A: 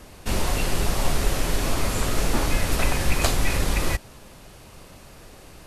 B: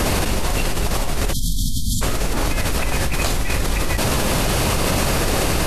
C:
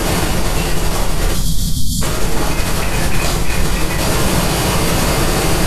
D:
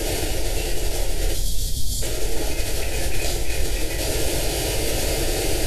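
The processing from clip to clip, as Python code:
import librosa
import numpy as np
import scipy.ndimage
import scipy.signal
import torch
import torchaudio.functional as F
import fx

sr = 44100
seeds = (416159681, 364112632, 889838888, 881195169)

y1 = fx.spec_erase(x, sr, start_s=1.33, length_s=0.69, low_hz=260.0, high_hz=3100.0)
y1 = fx.env_flatten(y1, sr, amount_pct=100)
y1 = y1 * librosa.db_to_amplitude(-5.0)
y2 = fx.echo_feedback(y1, sr, ms=380, feedback_pct=31, wet_db=-17.5)
y2 = fx.rev_plate(y2, sr, seeds[0], rt60_s=0.55, hf_ratio=0.75, predelay_ms=0, drr_db=-1.5)
y3 = fx.fixed_phaser(y2, sr, hz=460.0, stages=4)
y3 = y3 + 10.0 ** (-17.5 / 20.0) * np.pad(y3, (int(974 * sr / 1000.0), 0))[:len(y3)]
y3 = y3 * librosa.db_to_amplitude(-5.5)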